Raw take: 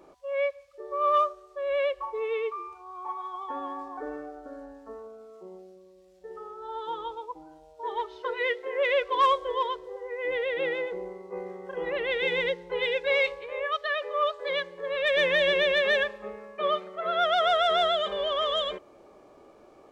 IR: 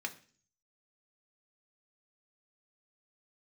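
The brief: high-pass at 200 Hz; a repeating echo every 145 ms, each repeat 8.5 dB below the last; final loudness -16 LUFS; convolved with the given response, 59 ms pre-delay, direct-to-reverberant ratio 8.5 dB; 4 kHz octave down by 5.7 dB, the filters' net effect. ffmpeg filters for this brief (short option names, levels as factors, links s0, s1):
-filter_complex "[0:a]highpass=200,equalizer=f=4000:t=o:g=-7.5,aecho=1:1:145|290|435|580:0.376|0.143|0.0543|0.0206,asplit=2[s0][s1];[1:a]atrim=start_sample=2205,adelay=59[s2];[s1][s2]afir=irnorm=-1:irlink=0,volume=0.316[s3];[s0][s3]amix=inputs=2:normalize=0,volume=3.76"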